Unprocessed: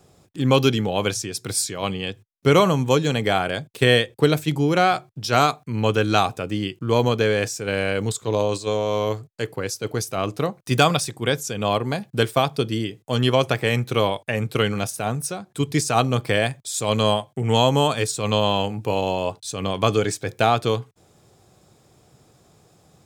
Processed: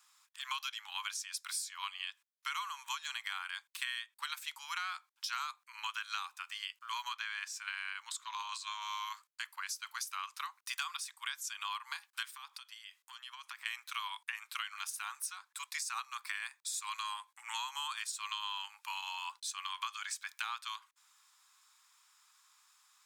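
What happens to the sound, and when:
0:07.13–0:08.82: high-shelf EQ 6,100 Hz −8.5 dB
0:12.30–0:13.66: downward compressor 5 to 1, threshold −34 dBFS
0:15.54–0:17.70: notch filter 3,100 Hz, Q 7.1
whole clip: Butterworth high-pass 960 Hz 72 dB per octave; downward compressor 6 to 1, threshold −32 dBFS; level −4.5 dB

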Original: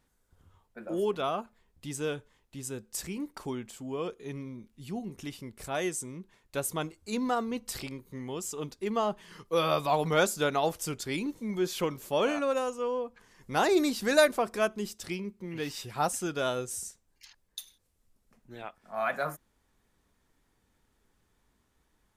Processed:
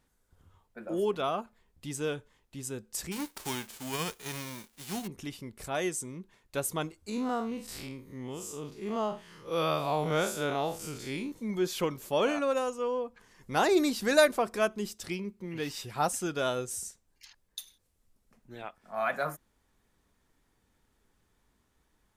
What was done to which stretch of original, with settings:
0:03.11–0:05.06: spectral envelope flattened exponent 0.3
0:07.09–0:11.32: spectrum smeared in time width 110 ms

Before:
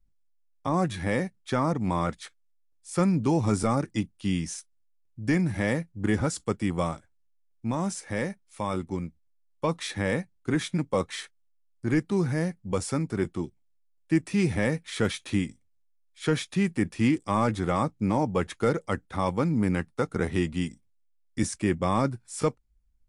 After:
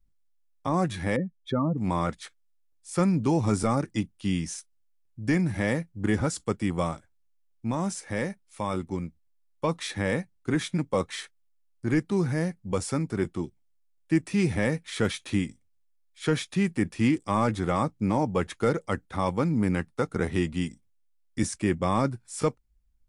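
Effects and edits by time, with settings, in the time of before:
0:01.16–0:01.78: expanding power law on the bin magnitudes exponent 2.2

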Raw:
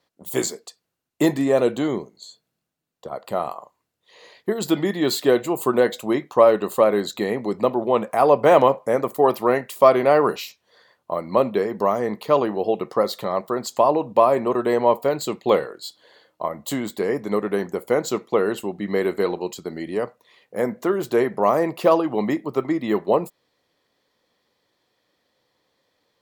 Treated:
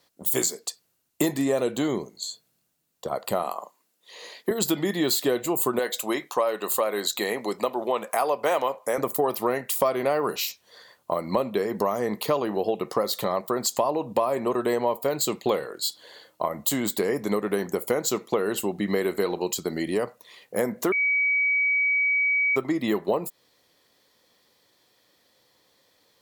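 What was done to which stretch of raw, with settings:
0:03.43–0:04.51: Butterworth high-pass 180 Hz
0:05.79–0:08.98: high-pass filter 700 Hz 6 dB per octave
0:20.92–0:22.56: beep over 2,270 Hz −19.5 dBFS
whole clip: high-shelf EQ 5,000 Hz +11.5 dB; downward compressor 4 to 1, threshold −25 dBFS; level +3 dB

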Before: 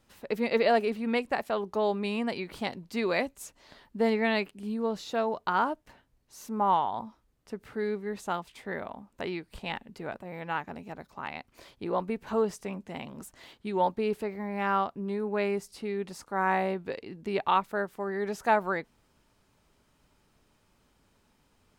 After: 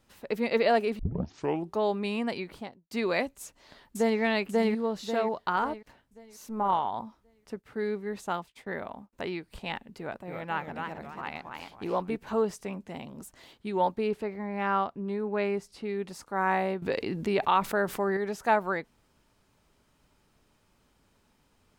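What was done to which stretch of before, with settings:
0:00.99: tape start 0.75 s
0:02.37–0:02.91: fade out and dull
0:03.41–0:04.20: delay throw 540 ms, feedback 40%, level 0 dB
0:05.56–0:06.85: amplitude modulation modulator 220 Hz, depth 25%
0:07.56–0:09.13: downward expander −47 dBFS
0:10.01–0:12.16: feedback echo with a swinging delay time 274 ms, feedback 33%, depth 204 cents, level −4.5 dB
0:12.94–0:13.55: dynamic equaliser 1,700 Hz, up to −6 dB, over −55 dBFS, Q 0.71
0:14.07–0:15.89: high-shelf EQ 8,400 Hz −12 dB
0:16.82–0:18.17: envelope flattener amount 50%

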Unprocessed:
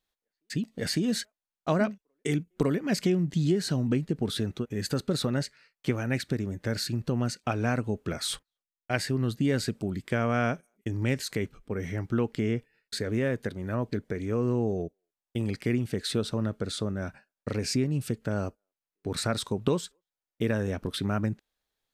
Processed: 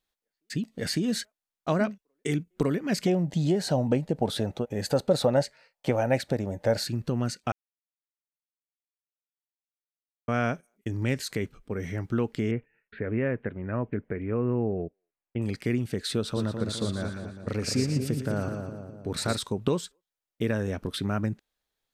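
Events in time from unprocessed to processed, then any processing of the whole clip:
0:03.07–0:06.89: flat-topped bell 680 Hz +13.5 dB 1.1 octaves
0:07.52–0:10.28: silence
0:12.51–0:15.42: Butterworth low-pass 2,700 Hz 48 dB per octave
0:16.16–0:19.37: echo with a time of its own for lows and highs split 940 Hz, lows 207 ms, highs 116 ms, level −5.5 dB

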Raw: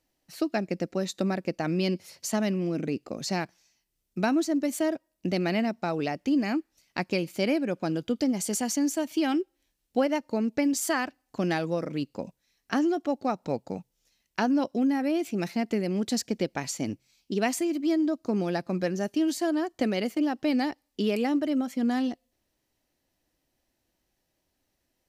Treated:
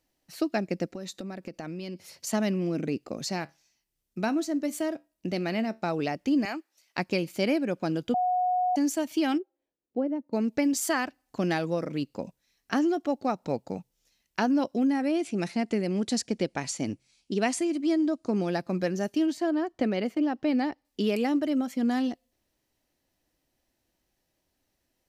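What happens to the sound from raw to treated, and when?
0:00.86–0:02.27: downward compressor 10 to 1, threshold −33 dBFS
0:03.28–0:05.82: tuned comb filter 74 Hz, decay 0.24 s, mix 40%
0:06.45–0:06.98: high-pass filter 510 Hz
0:08.14–0:08.76: beep over 729 Hz −22.5 dBFS
0:09.37–0:10.32: resonant band-pass 690 Hz → 230 Hz, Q 1.6
0:14.88–0:18.52: bad sample-rate conversion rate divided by 2×, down none, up filtered
0:19.26–0:20.85: low-pass filter 2,400 Hz 6 dB per octave

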